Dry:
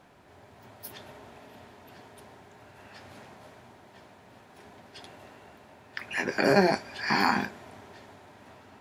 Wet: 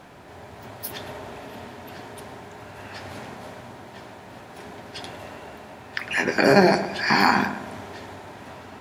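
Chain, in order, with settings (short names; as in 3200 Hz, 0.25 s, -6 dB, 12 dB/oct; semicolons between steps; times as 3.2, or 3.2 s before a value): in parallel at -1 dB: compressor, threshold -40 dBFS, peak gain reduction 22.5 dB; on the sum: darkening echo 0.106 s, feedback 45%, low-pass 2000 Hz, level -9 dB; gain +5 dB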